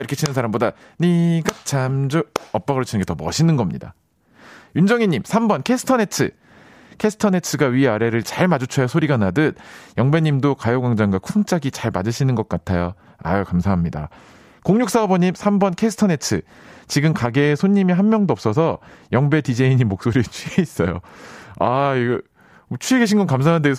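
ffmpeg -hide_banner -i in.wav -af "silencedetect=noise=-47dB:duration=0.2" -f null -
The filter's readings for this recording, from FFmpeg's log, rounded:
silence_start: 3.95
silence_end: 4.31 | silence_duration: 0.36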